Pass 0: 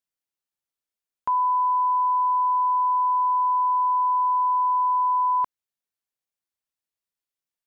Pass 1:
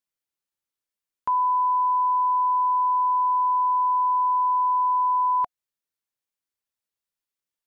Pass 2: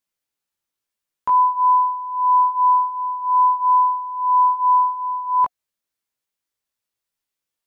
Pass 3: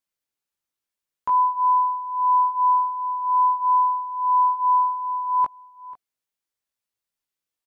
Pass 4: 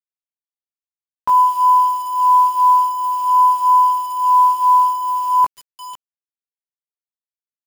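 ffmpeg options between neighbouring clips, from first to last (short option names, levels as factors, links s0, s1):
-af "bandreject=f=720:w=12"
-af "flanger=delay=16.5:depth=2.1:speed=0.49,volume=2.51"
-af "aecho=1:1:490:0.119,volume=0.668"
-af "acrusher=bits=6:mix=0:aa=0.000001,volume=2.11"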